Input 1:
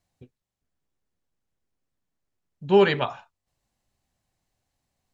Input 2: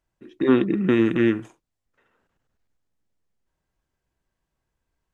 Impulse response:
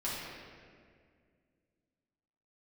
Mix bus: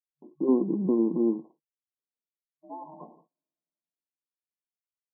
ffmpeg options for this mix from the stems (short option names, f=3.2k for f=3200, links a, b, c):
-filter_complex "[0:a]acompressor=threshold=-21dB:ratio=6,aeval=exprs='val(0)*sin(2*PI*470*n/s)':c=same,volume=-12.5dB,asplit=2[a][b];[b]volume=-17dB[c];[1:a]adynamicsmooth=sensitivity=5.5:basefreq=560,volume=-5dB[d];[2:a]atrim=start_sample=2205[e];[c][e]afir=irnorm=-1:irlink=0[f];[a][d][f]amix=inputs=3:normalize=0,agate=range=-30dB:threshold=-54dB:ratio=16:detection=peak,afftfilt=real='re*between(b*sr/4096,150,1100)':imag='im*between(b*sr/4096,150,1100)':win_size=4096:overlap=0.75"